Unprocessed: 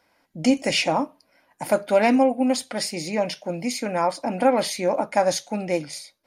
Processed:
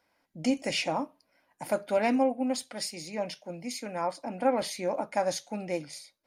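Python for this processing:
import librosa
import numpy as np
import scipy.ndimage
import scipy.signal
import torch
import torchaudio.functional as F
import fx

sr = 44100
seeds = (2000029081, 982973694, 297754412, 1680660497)

y = fx.band_widen(x, sr, depth_pct=40, at=(1.97, 4.62))
y = y * 10.0 ** (-8.0 / 20.0)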